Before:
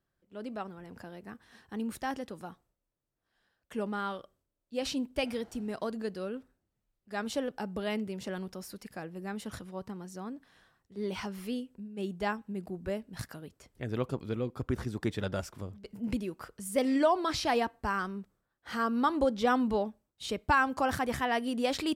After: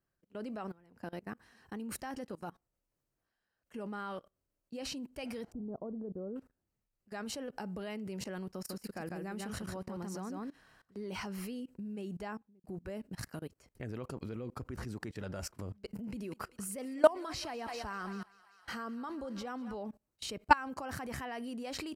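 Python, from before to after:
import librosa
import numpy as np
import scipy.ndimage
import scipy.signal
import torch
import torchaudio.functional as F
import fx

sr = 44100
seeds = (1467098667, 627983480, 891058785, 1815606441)

y = fx.gaussian_blur(x, sr, sigma=11.0, at=(5.52, 6.36))
y = fx.echo_single(y, sr, ms=150, db=-4.0, at=(8.54, 11.02))
y = fx.studio_fade_out(y, sr, start_s=12.17, length_s=0.47)
y = fx.echo_thinned(y, sr, ms=195, feedback_pct=71, hz=690.0, wet_db=-14.0, at=(15.95, 19.75))
y = fx.notch(y, sr, hz=3500.0, q=5.9)
y = fx.level_steps(y, sr, step_db=23)
y = F.gain(torch.from_numpy(y), 5.5).numpy()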